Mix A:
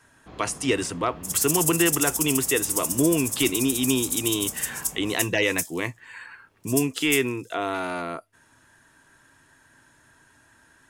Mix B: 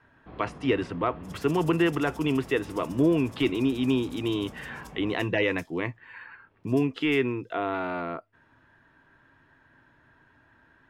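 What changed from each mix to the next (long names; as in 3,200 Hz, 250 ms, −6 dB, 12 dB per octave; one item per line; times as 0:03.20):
master: add high-frequency loss of the air 360 metres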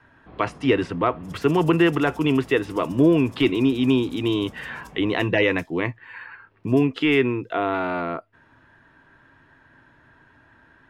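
speech +5.5 dB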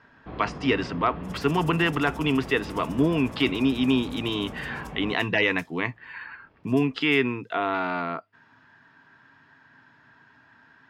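speech: add loudspeaker in its box 150–7,500 Hz, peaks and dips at 340 Hz −9 dB, 550 Hz −10 dB, 4,900 Hz +7 dB
first sound +7.0 dB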